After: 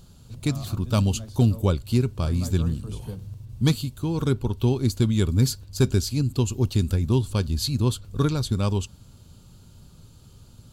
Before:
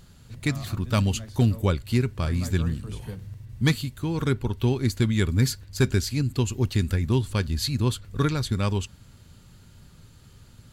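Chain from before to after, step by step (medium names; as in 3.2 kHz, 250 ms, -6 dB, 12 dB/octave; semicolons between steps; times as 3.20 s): peaking EQ 1.9 kHz -13.5 dB 0.66 oct; trim +1.5 dB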